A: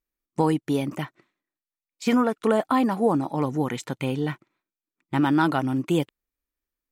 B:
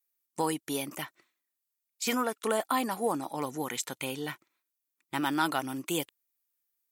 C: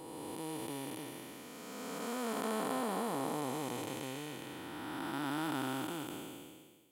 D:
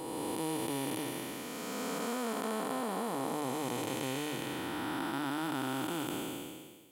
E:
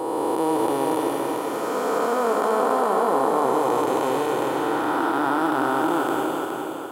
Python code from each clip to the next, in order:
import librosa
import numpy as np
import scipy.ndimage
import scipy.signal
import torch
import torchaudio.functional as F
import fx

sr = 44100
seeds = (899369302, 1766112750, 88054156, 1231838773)

y1 = fx.cheby_harmonics(x, sr, harmonics=(6, 8), levels_db=(-42, -44), full_scale_db=-8.5)
y1 = fx.riaa(y1, sr, side='recording')
y1 = fx.wow_flutter(y1, sr, seeds[0], rate_hz=2.1, depth_cents=18.0)
y1 = y1 * librosa.db_to_amplitude(-5.0)
y2 = fx.spec_blur(y1, sr, span_ms=938.0)
y2 = y2 * librosa.db_to_amplitude(1.0)
y3 = fx.hum_notches(y2, sr, base_hz=50, count=3)
y3 = fx.rider(y3, sr, range_db=4, speed_s=0.5)
y3 = y3 * librosa.db_to_amplitude(4.0)
y4 = fx.band_shelf(y3, sr, hz=700.0, db=13.0, octaves=2.5)
y4 = fx.echo_feedback(y4, sr, ms=416, feedback_pct=46, wet_db=-5)
y4 = y4 * librosa.db_to_amplitude(2.5)